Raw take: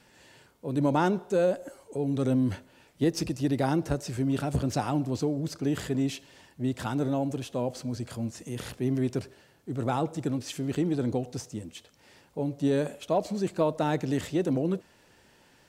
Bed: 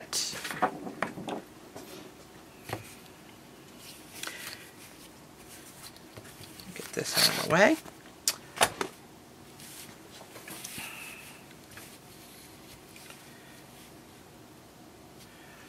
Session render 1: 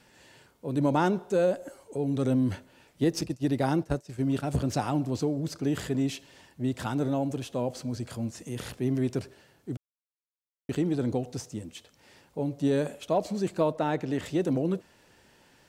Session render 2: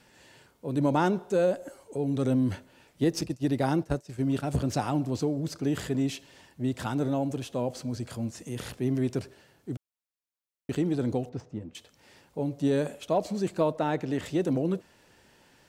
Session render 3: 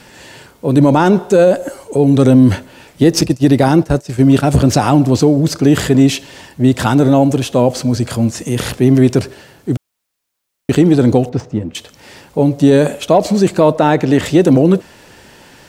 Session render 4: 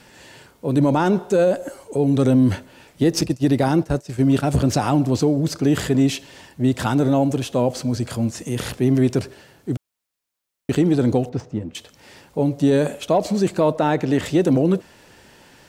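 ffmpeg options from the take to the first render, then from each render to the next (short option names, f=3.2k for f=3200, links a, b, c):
-filter_complex "[0:a]asettb=1/sr,asplit=3[a][b][c];[a]atrim=end=3.214[d];[b]atrim=start=3.21:end=4.47,asetpts=PTS-STARTPTS,afade=t=in:d=0.004:c=qsin,afade=t=out:st=1.256:d=0.004:c=qsin,agate=range=-33dB:threshold=-29dB:ratio=3:release=100:detection=peak[e];[c]atrim=start=4.466[f];[d][e]acrossfade=d=0.004:c1=hsin:c2=qsin[g];[g][f]acrossfade=d=0.004:c1=qsin:c2=hsin,asettb=1/sr,asplit=3[h][i][j];[h]atrim=end=13.724[k];[i]atrim=start=13.72:end=14.26,asetpts=PTS-STARTPTS,afade=t=in:d=0.004:c=qsin,afade=t=out:st=0.536:d=0.004:c=qsin,bass=f=250:g=-4,treble=f=4k:g=-8[l];[j]atrim=start=14.256[m];[k][l]acrossfade=d=0.004:c1=hsin:c2=qsin[n];[n][m]acrossfade=d=0.004:c1=qsin:c2=hsin,asplit=3[o][p][q];[o]atrim=end=9.77,asetpts=PTS-STARTPTS,afade=t=out:st=9.766:d=0.004:c=hsin[r];[p]atrim=start=9.77:end=10.69,asetpts=PTS-STARTPTS,volume=0[s];[q]atrim=start=10.69,asetpts=PTS-STARTPTS,afade=t=in:d=0.004:c=hsin[t];[r][s][t]concat=n=3:v=0:a=1"
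-filter_complex "[0:a]asettb=1/sr,asplit=3[a][b][c];[a]atrim=end=11.294[d];[b]atrim=start=11.29:end=11.75,asetpts=PTS-STARTPTS,afade=t=in:d=0.004:c=qsin,afade=t=out:st=0.456:d=0.004:c=qsin,adynamicsmooth=sensitivity=4:basefreq=1.8k[e];[c]atrim=start=11.746[f];[d][e]acrossfade=d=0.004:c1=hsin:c2=qsin[g];[g][f]acrossfade=d=0.004:c1=qsin:c2=hsin"
-af "acontrast=74,alimiter=level_in=11.5dB:limit=-1dB:release=50:level=0:latency=1"
-af "volume=-7.5dB"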